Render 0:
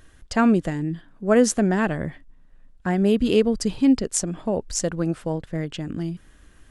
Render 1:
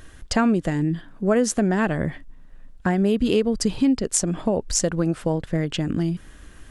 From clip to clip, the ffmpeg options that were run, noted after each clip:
-af "acompressor=threshold=-26dB:ratio=3,volume=7dB"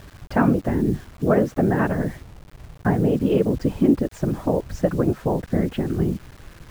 -af "afftfilt=real='hypot(re,im)*cos(2*PI*random(0))':imag='hypot(re,im)*sin(2*PI*random(1))':win_size=512:overlap=0.75,lowpass=1.6k,acrusher=bits=8:mix=0:aa=0.000001,volume=7.5dB"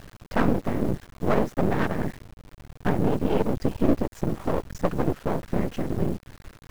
-af "aeval=exprs='max(val(0),0)':c=same"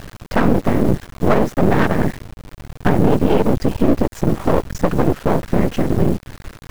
-af "alimiter=level_in=11.5dB:limit=-1dB:release=50:level=0:latency=1,volume=-1dB"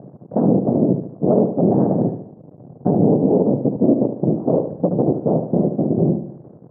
-af "asuperpass=centerf=300:order=8:qfactor=0.52,aecho=1:1:73|146|219|292|365:0.376|0.165|0.0728|0.032|0.0141"

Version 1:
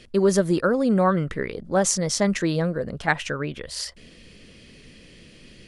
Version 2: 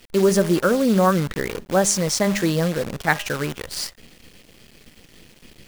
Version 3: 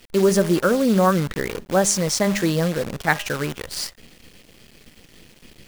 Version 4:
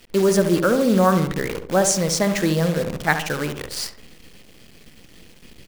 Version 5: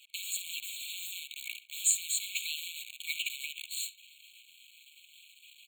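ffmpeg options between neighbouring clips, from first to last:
-af "bandreject=f=203.5:t=h:w=4,bandreject=f=407:t=h:w=4,bandreject=f=610.5:t=h:w=4,bandreject=f=814:t=h:w=4,bandreject=f=1.0175k:t=h:w=4,bandreject=f=1.221k:t=h:w=4,bandreject=f=1.4245k:t=h:w=4,bandreject=f=1.628k:t=h:w=4,bandreject=f=1.8315k:t=h:w=4,acrusher=bits=6:dc=4:mix=0:aa=0.000001,volume=2.5dB"
-af anull
-filter_complex "[0:a]asplit=2[a][b];[b]adelay=69,lowpass=f=1.3k:p=1,volume=-7dB,asplit=2[c][d];[d]adelay=69,lowpass=f=1.3k:p=1,volume=0.52,asplit=2[e][f];[f]adelay=69,lowpass=f=1.3k:p=1,volume=0.52,asplit=2[g][h];[h]adelay=69,lowpass=f=1.3k:p=1,volume=0.52,asplit=2[i][j];[j]adelay=69,lowpass=f=1.3k:p=1,volume=0.52,asplit=2[k][l];[l]adelay=69,lowpass=f=1.3k:p=1,volume=0.52[m];[a][c][e][g][i][k][m]amix=inputs=7:normalize=0"
-af "afftfilt=real='re*eq(mod(floor(b*sr/1024/2200),2),1)':imag='im*eq(mod(floor(b*sr/1024/2200),2),1)':win_size=1024:overlap=0.75,volume=-2dB"

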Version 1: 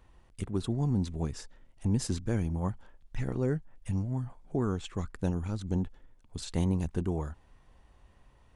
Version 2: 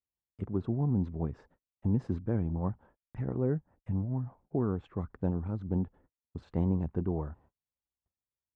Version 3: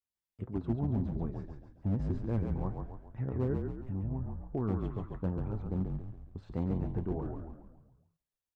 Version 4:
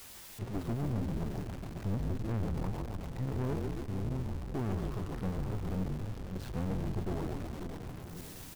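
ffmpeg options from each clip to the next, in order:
-af "highpass=69,agate=range=-39dB:threshold=-57dB:ratio=16:detection=peak,lowpass=1.1k"
-filter_complex "[0:a]flanger=delay=6.8:depth=3.7:regen=60:speed=1.8:shape=triangular,asoftclip=type=hard:threshold=-26.5dB,asplit=2[a][b];[b]asplit=6[c][d][e][f][g][h];[c]adelay=138,afreqshift=-40,volume=-4dB[i];[d]adelay=276,afreqshift=-80,volume=-10dB[j];[e]adelay=414,afreqshift=-120,volume=-16dB[k];[f]adelay=552,afreqshift=-160,volume=-22.1dB[l];[g]adelay=690,afreqshift=-200,volume=-28.1dB[m];[h]adelay=828,afreqshift=-240,volume=-34.1dB[n];[i][j][k][l][m][n]amix=inputs=6:normalize=0[o];[a][o]amix=inputs=2:normalize=0,volume=1dB"
-af "aeval=exprs='val(0)+0.5*0.0112*sgn(val(0))':c=same,aecho=1:1:540|1080|1620|2160|2700|3240:0.251|0.133|0.0706|0.0374|0.0198|0.0105,aeval=exprs='(tanh(35.5*val(0)+0.55)-tanh(0.55))/35.5':c=same,volume=1.5dB"

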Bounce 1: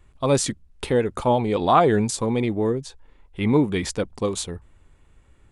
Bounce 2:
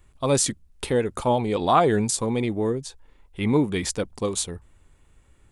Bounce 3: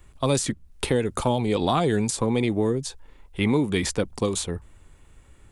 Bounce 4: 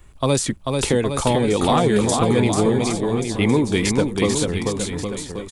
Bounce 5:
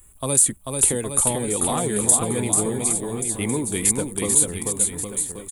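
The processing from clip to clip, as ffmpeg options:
-af "highshelf=f=6.3k:g=9,volume=-2dB"
-filter_complex "[0:a]acrossover=split=300|2900[a][b][c];[a]acompressor=threshold=-28dB:ratio=4[d];[b]acompressor=threshold=-29dB:ratio=4[e];[c]acompressor=threshold=-34dB:ratio=4[f];[d][e][f]amix=inputs=3:normalize=0,volume=5dB"
-af "aecho=1:1:440|814|1132|1402|1632:0.631|0.398|0.251|0.158|0.1,volume=3.5dB"
-af "aexciter=amount=15.7:drive=5.5:freq=7.9k,volume=-7.5dB"

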